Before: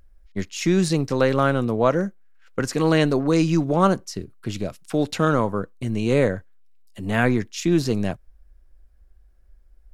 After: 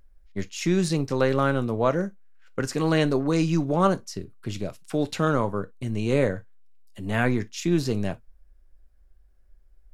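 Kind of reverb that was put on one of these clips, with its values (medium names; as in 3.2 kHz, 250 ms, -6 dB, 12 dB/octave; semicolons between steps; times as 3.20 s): gated-style reverb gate 80 ms falling, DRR 12 dB; trim -3.5 dB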